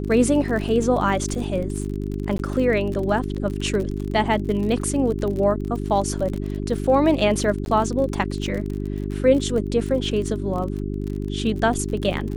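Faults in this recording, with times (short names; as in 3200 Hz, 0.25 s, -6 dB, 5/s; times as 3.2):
crackle 44/s -28 dBFS
hum 50 Hz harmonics 8 -27 dBFS
2.38–2.39 gap 12 ms
7.65–7.66 gap 11 ms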